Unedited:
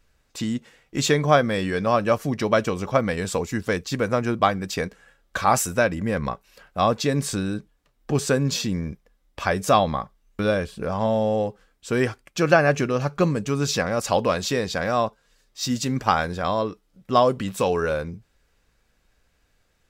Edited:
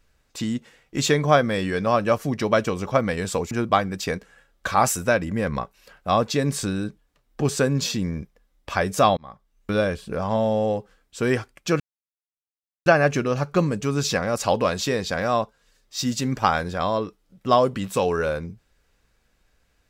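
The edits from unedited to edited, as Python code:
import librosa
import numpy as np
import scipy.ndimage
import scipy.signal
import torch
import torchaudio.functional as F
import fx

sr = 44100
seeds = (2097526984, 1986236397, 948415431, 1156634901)

y = fx.edit(x, sr, fx.cut(start_s=3.51, length_s=0.7),
    fx.fade_in_span(start_s=9.87, length_s=0.53),
    fx.insert_silence(at_s=12.5, length_s=1.06), tone=tone)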